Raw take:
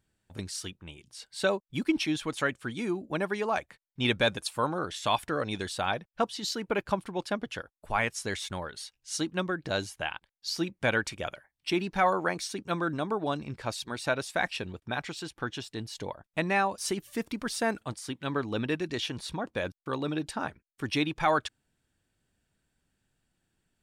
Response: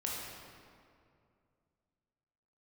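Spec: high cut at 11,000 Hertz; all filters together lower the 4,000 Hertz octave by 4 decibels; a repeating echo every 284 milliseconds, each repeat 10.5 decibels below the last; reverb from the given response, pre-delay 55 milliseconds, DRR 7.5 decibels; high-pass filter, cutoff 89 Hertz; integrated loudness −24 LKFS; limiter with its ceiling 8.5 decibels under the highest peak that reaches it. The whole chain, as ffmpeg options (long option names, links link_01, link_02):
-filter_complex "[0:a]highpass=89,lowpass=11000,equalizer=frequency=4000:width_type=o:gain=-5,alimiter=limit=-21.5dB:level=0:latency=1,aecho=1:1:284|568|852:0.299|0.0896|0.0269,asplit=2[link_01][link_02];[1:a]atrim=start_sample=2205,adelay=55[link_03];[link_02][link_03]afir=irnorm=-1:irlink=0,volume=-10.5dB[link_04];[link_01][link_04]amix=inputs=2:normalize=0,volume=10dB"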